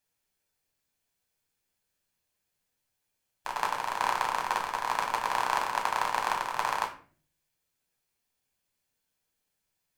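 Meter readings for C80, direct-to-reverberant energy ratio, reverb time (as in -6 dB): 14.0 dB, -0.5 dB, 0.45 s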